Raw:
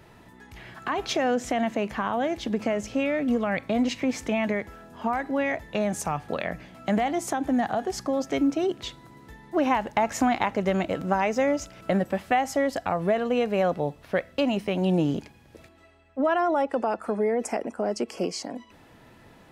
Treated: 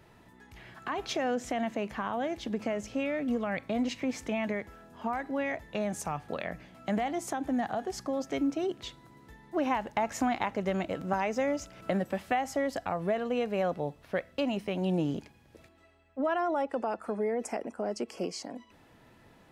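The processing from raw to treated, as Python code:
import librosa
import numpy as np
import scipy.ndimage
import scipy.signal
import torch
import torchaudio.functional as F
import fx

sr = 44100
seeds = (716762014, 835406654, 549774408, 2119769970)

y = fx.band_squash(x, sr, depth_pct=40, at=(11.13, 12.85))
y = F.gain(torch.from_numpy(y), -6.0).numpy()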